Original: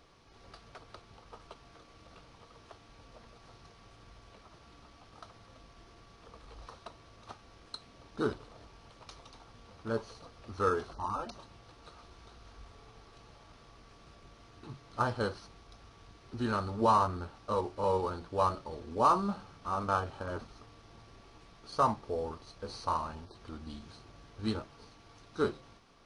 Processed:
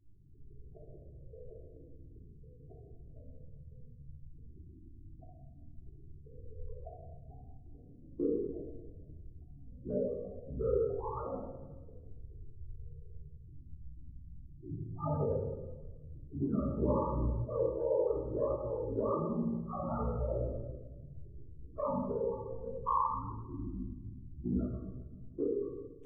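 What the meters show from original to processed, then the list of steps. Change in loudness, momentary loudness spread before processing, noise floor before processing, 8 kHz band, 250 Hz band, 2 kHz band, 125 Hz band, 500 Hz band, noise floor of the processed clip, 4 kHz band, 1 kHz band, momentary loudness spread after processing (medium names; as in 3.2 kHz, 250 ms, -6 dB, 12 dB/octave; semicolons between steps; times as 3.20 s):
-2.5 dB, 23 LU, -58 dBFS, under -25 dB, +1.5 dB, under -30 dB, +3.0 dB, +1.5 dB, -54 dBFS, under -35 dB, -8.0 dB, 22 LU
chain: level-controlled noise filter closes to 360 Hz, open at -27.5 dBFS; loudest bins only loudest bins 4; ring modulator 29 Hz; low-pass sweep 550 Hz -> 2.9 kHz, 21.74–24.35 s; compression 2.5:1, threshold -40 dBFS, peak gain reduction 11 dB; simulated room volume 700 m³, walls mixed, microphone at 3.2 m; trim +1.5 dB; Vorbis 16 kbps 22.05 kHz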